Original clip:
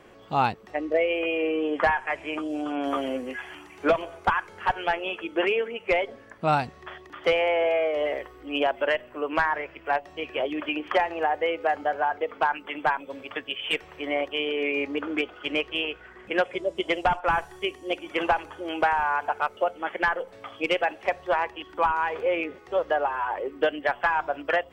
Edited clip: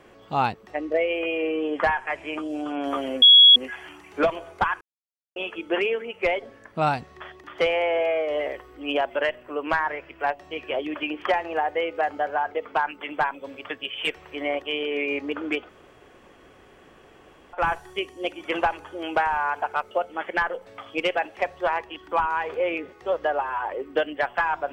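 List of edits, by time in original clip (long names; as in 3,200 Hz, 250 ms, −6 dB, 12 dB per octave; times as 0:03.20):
0:03.22: insert tone 3,340 Hz −8 dBFS 0.34 s
0:04.47–0:05.02: silence
0:15.35–0:17.19: fill with room tone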